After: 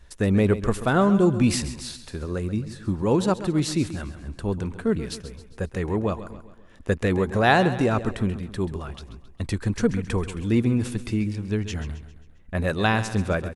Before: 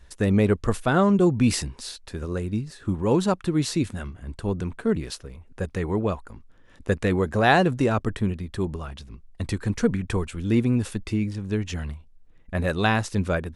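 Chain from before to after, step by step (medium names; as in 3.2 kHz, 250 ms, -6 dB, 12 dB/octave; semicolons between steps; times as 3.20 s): feedback delay 134 ms, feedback 47%, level -13 dB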